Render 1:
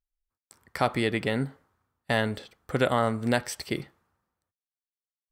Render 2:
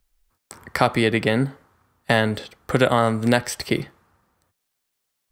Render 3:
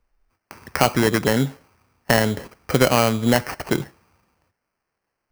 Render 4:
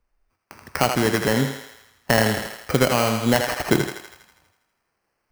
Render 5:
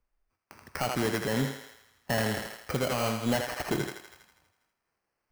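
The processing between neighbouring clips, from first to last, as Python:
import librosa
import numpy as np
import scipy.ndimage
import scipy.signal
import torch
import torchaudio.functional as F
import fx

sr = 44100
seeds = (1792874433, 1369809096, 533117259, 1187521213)

y1 = fx.band_squash(x, sr, depth_pct=40)
y1 = y1 * 10.0 ** (7.0 / 20.0)
y2 = fx.high_shelf(y1, sr, hz=5900.0, db=-5.5)
y2 = fx.sample_hold(y2, sr, seeds[0], rate_hz=3600.0, jitter_pct=0)
y2 = y2 * 10.0 ** (1.0 / 20.0)
y3 = fx.echo_thinned(y2, sr, ms=81, feedback_pct=61, hz=440.0, wet_db=-5.5)
y3 = fx.rider(y3, sr, range_db=4, speed_s=0.5)
y3 = y3 * 10.0 ** (-1.0 / 20.0)
y4 = np.clip(10.0 ** (14.5 / 20.0) * y3, -1.0, 1.0) / 10.0 ** (14.5 / 20.0)
y4 = fx.am_noise(y4, sr, seeds[1], hz=5.7, depth_pct=50)
y4 = y4 * 10.0 ** (-4.5 / 20.0)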